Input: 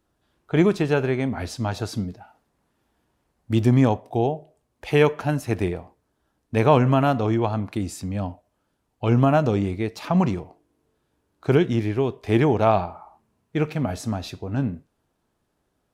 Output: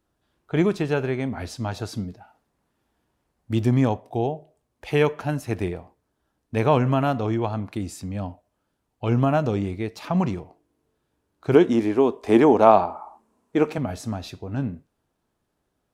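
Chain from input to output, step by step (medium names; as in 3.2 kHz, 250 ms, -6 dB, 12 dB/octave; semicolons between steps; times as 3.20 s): 11.54–13.78 s: graphic EQ 125/250/500/1000/8000 Hz -12/+9/+5/+8/+7 dB; trim -2.5 dB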